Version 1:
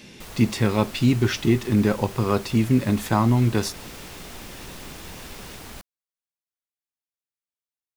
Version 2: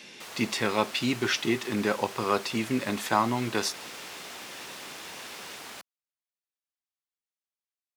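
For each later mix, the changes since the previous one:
master: add frequency weighting A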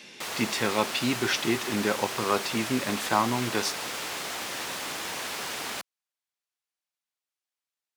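background +8.5 dB

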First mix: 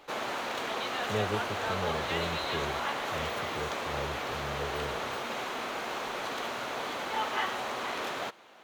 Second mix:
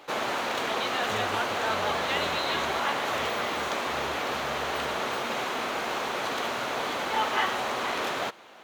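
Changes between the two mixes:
speech -6.0 dB; background +5.0 dB

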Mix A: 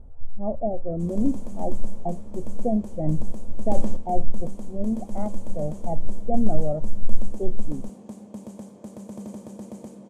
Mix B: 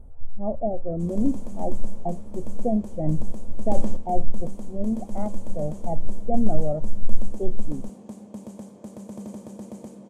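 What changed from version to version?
speech: remove distance through air 59 m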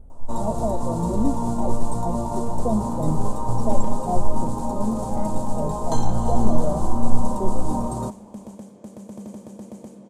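first sound: unmuted

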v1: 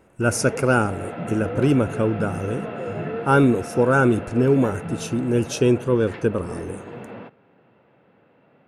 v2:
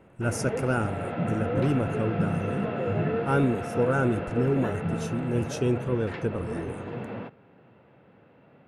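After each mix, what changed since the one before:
speech -9.5 dB; master: add bass shelf 110 Hz +10.5 dB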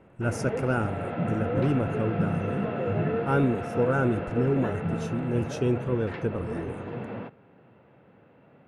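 master: add treble shelf 5.7 kHz -9 dB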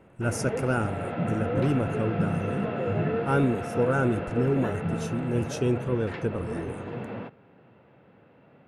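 master: add treble shelf 5.7 kHz +9 dB

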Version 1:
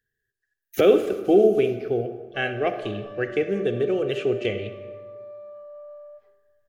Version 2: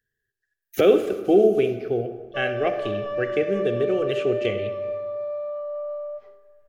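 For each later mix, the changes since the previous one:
background +11.0 dB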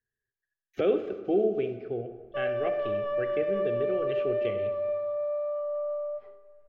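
speech -8.0 dB; master: add distance through air 230 m

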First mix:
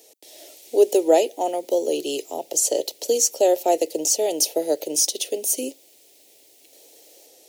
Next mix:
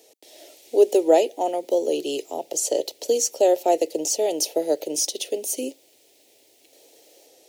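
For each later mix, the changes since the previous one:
master: add treble shelf 5.6 kHz -7 dB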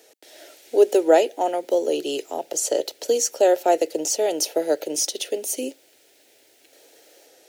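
master: add peaking EQ 1.5 kHz +15 dB 0.64 oct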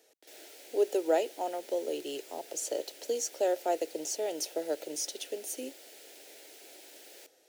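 speech -11.5 dB; background +6.5 dB

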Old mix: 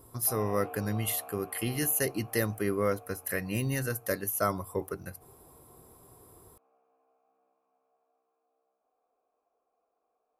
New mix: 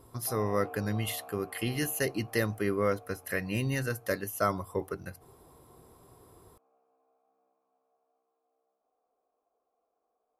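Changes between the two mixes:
speech: add peaking EQ 4 kHz +9.5 dB 2.6 oct; master: add treble shelf 2.2 kHz -10.5 dB

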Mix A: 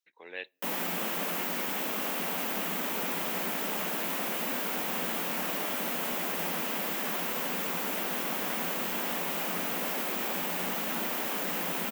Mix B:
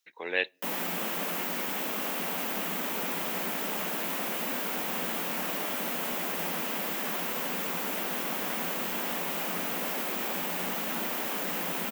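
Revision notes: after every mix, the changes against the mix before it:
speech +11.5 dB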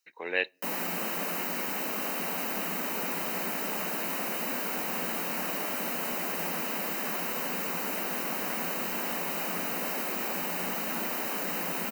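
master: add Butterworth band-stop 3.4 kHz, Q 5.7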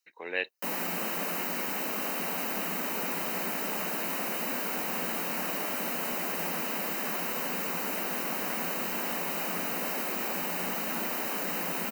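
reverb: off

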